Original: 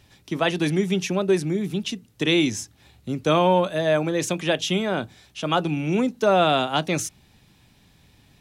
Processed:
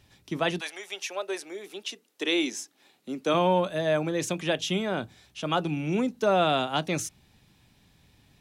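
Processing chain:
0:00.59–0:03.33: high-pass filter 680 Hz → 200 Hz 24 dB per octave
level −4.5 dB

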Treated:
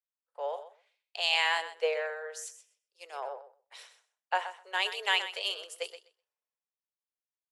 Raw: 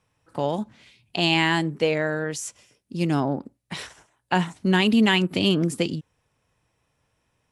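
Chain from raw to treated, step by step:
Butterworth high-pass 450 Hz 72 dB per octave
on a send: repeating echo 127 ms, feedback 18%, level −10 dB
on the sum: multiband upward and downward expander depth 70%
level −8.5 dB

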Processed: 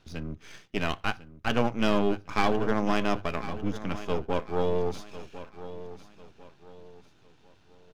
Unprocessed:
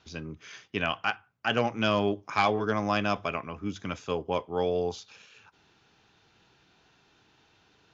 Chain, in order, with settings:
gain on one half-wave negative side −12 dB
low-shelf EQ 450 Hz +8.5 dB
on a send: repeating echo 1,049 ms, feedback 35%, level −14 dB

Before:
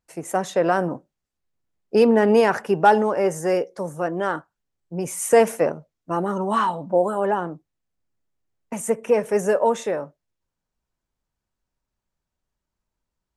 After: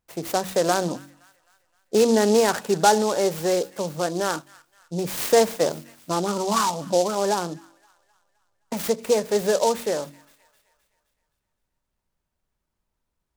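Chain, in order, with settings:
hum removal 47.24 Hz, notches 7
in parallel at +1 dB: downward compressor, threshold −29 dBFS, peak gain reduction 18 dB
on the sum: delay with a high-pass on its return 260 ms, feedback 49%, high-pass 2,100 Hz, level −14.5 dB
short delay modulated by noise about 5,300 Hz, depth 0.059 ms
level −3.5 dB

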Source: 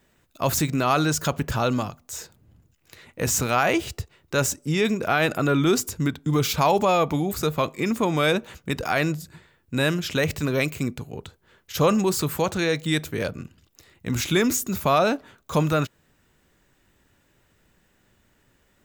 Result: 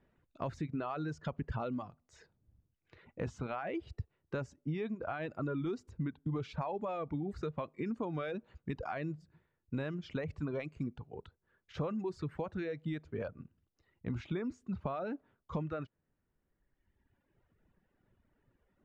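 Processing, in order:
reverb reduction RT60 1.7 s
downward compressor 6 to 1, threshold −27 dBFS, peak gain reduction 11.5 dB
head-to-tape spacing loss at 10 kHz 38 dB, from 0:12.38 at 10 kHz 44 dB
level −5 dB

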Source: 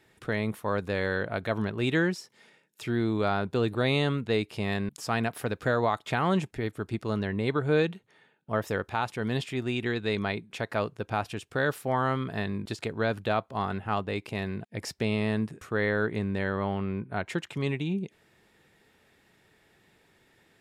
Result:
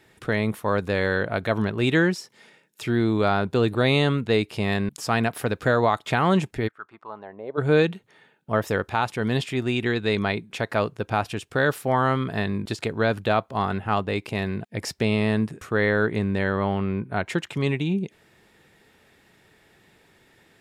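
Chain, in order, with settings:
0:06.67–0:07.57: resonant band-pass 1,600 Hz → 530 Hz, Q 4
level +5.5 dB

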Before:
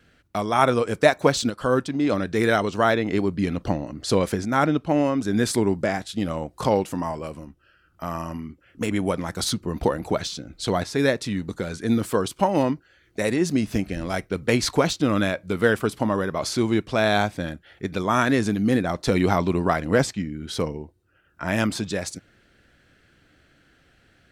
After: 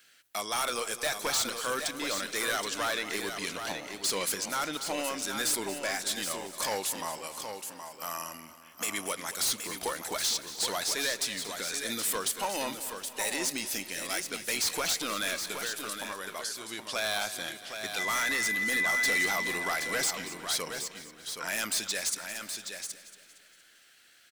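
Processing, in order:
first difference
in parallel at +1 dB: brickwall limiter −26 dBFS, peak gain reduction 11.5 dB
0:15.40–0:16.80: on the sum: downward compressor 6 to 1, threshold −39 dBFS, peak gain reduction 14.5 dB
0:17.98–0:19.25: steady tone 2,000 Hz −34 dBFS
gain into a clipping stage and back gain 30 dB
single-tap delay 772 ms −7.5 dB
on a send at −21.5 dB: convolution reverb RT60 4.8 s, pre-delay 58 ms
on the sum: feedback echo at a low word length 231 ms, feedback 55%, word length 11 bits, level −14 dB
level +4 dB

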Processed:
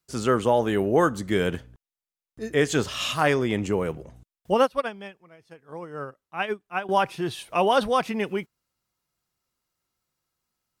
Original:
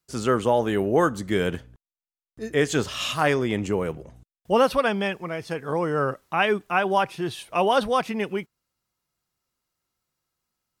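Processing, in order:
0:04.54–0:06.89: expander for the loud parts 2.5 to 1, over −30 dBFS

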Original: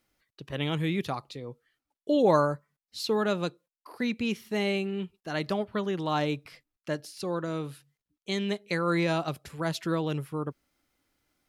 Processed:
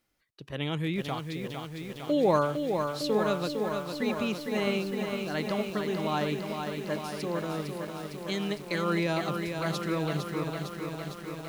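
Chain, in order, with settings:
feedback echo at a low word length 456 ms, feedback 80%, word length 8 bits, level −5.5 dB
level −2 dB

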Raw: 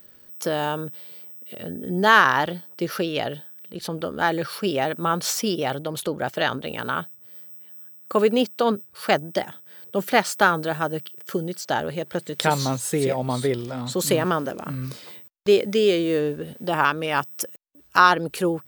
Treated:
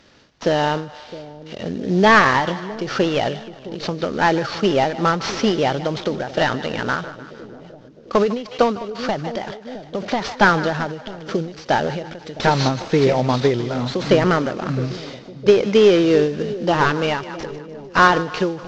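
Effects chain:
variable-slope delta modulation 32 kbit/s
echo with a time of its own for lows and highs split 620 Hz, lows 662 ms, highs 151 ms, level −15 dB
every ending faded ahead of time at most 110 dB per second
level +7.5 dB

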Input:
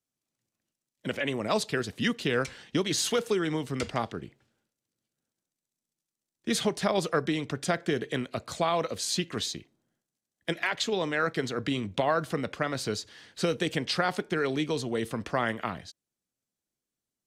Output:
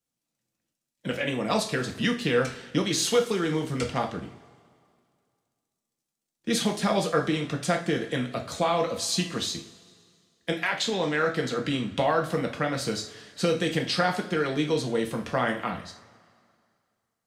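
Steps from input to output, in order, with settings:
coupled-rooms reverb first 0.37 s, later 2.2 s, from −20 dB, DRR 1.5 dB

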